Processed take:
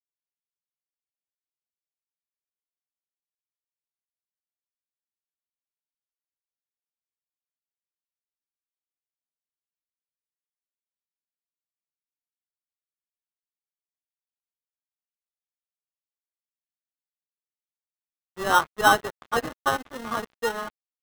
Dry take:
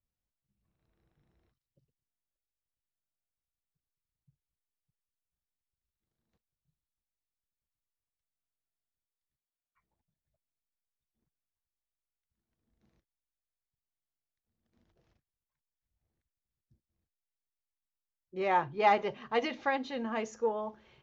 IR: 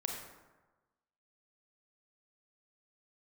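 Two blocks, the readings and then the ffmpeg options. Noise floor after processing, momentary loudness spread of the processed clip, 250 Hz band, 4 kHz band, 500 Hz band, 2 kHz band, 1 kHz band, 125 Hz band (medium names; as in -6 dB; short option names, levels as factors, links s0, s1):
under -85 dBFS, 12 LU, +2.0 dB, +11.5 dB, +2.5 dB, +10.5 dB, +6.5 dB, +7.0 dB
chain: -af "acrusher=samples=19:mix=1:aa=0.000001,equalizer=f=1200:t=o:w=0.54:g=12.5,aeval=exprs='sgn(val(0))*max(abs(val(0))-0.0141,0)':c=same,volume=1.68"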